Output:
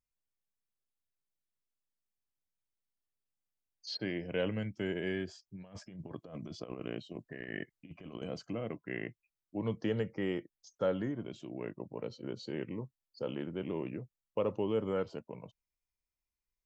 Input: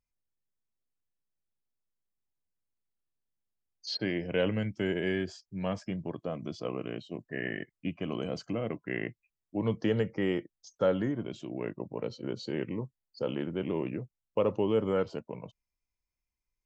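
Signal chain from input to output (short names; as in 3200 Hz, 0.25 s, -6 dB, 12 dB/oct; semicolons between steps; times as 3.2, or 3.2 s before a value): 5.55–8.22 negative-ratio compressor -38 dBFS, ratio -0.5; gain -5 dB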